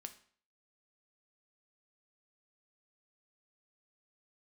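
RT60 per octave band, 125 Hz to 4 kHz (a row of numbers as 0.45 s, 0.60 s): 0.50 s, 0.50 s, 0.50 s, 0.50 s, 0.50 s, 0.45 s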